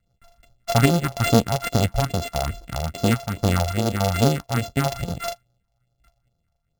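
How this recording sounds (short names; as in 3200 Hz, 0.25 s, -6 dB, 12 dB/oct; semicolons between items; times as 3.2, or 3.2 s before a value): a buzz of ramps at a fixed pitch in blocks of 64 samples; random-step tremolo; phasing stages 4, 2.4 Hz, lowest notch 290–2200 Hz; aliases and images of a low sample rate 11000 Hz, jitter 0%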